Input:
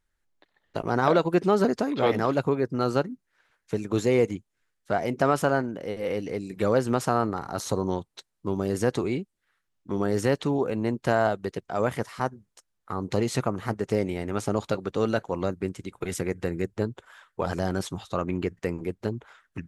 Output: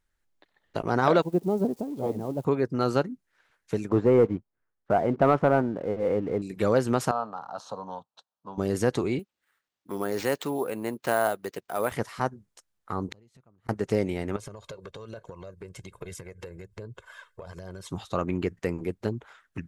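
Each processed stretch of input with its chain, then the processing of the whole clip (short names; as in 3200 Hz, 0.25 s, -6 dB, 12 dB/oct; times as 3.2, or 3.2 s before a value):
1.22–2.45 switching spikes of -16 dBFS + EQ curve 230 Hz 0 dB, 890 Hz -7 dB, 1400 Hz -23 dB + upward expander, over -41 dBFS
3.89–6.42 Chebyshev low-pass 1100 Hz + sample leveller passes 1
7.11–8.58 half-wave gain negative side -3 dB + BPF 290–3300 Hz + fixed phaser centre 860 Hz, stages 4
9.19–11.92 HPF 440 Hz 6 dB/oct + sample-rate reducer 11000 Hz
13.08–13.69 low shelf 160 Hz +11 dB + flipped gate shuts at -21 dBFS, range -37 dB
14.36–17.89 comb 1.9 ms + compressor 10:1, threshold -38 dBFS + phaser 1.2 Hz, delay 2.3 ms, feedback 34%
whole clip: dry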